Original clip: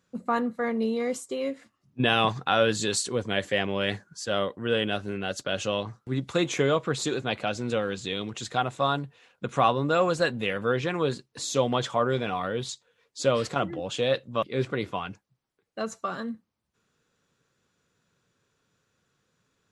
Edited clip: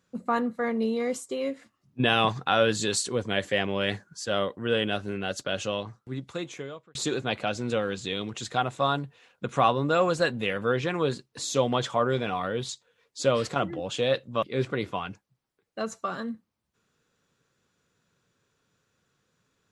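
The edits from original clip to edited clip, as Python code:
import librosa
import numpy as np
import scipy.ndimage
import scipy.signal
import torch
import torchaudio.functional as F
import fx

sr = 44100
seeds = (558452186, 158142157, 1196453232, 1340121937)

y = fx.edit(x, sr, fx.fade_out_span(start_s=5.4, length_s=1.55), tone=tone)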